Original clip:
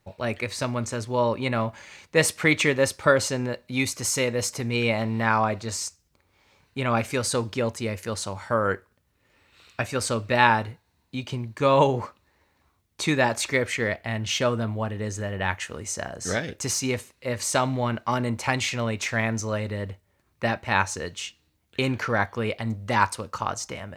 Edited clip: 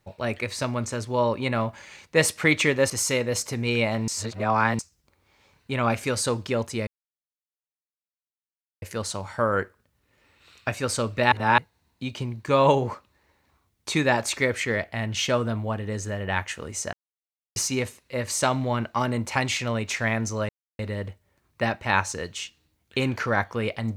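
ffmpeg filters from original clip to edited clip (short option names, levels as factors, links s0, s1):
-filter_complex "[0:a]asplit=10[s0][s1][s2][s3][s4][s5][s6][s7][s8][s9];[s0]atrim=end=2.902[s10];[s1]atrim=start=3.968:end=5.152[s11];[s2]atrim=start=5.148:end=5.862,asetpts=PTS-STARTPTS,areverse[s12];[s3]atrim=start=5.858:end=7.94,asetpts=PTS-STARTPTS,afade=t=out:st=2.078:d=0.004:c=hsin,apad=pad_dur=1.95[s13];[s4]atrim=start=7.94:end=10.442,asetpts=PTS-STARTPTS,afade=t=in:d=0.004:c=hsin[s14];[s5]atrim=start=10.438:end=10.702,asetpts=PTS-STARTPTS,areverse[s15];[s6]atrim=start=10.698:end=16.05,asetpts=PTS-STARTPTS,afade=t=out:st=5.348:d=0.004:c=hsin[s16];[s7]atrim=start=16.05:end=16.68,asetpts=PTS-STARTPTS,volume=0[s17];[s8]atrim=start=16.68:end=19.61,asetpts=PTS-STARTPTS,afade=t=in:d=0.004:c=hsin,afade=t=out:st=2.926:d=0.004:c=hsin,apad=pad_dur=0.3[s18];[s9]atrim=start=19.61,asetpts=PTS-STARTPTS,afade=t=in:d=0.004:c=hsin[s19];[s10][s11]acrossfade=d=0.004:c1=hsin:c2=hsin[s20];[s20][s12]acrossfade=d=0.004:c1=hsin:c2=hsin[s21];[s13][s14]concat=n=2:v=0:a=1[s22];[s21][s22]acrossfade=d=0.004:c1=hsin:c2=hsin[s23];[s23][s15]acrossfade=d=0.004:c1=hsin:c2=hsin[s24];[s16][s17][s18][s19]concat=n=4:v=0:a=1[s25];[s24][s25]acrossfade=d=0.004:c1=hsin:c2=hsin"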